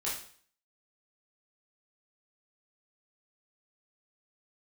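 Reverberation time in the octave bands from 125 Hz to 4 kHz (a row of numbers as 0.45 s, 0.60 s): 0.50 s, 0.50 s, 0.50 s, 0.50 s, 0.50 s, 0.50 s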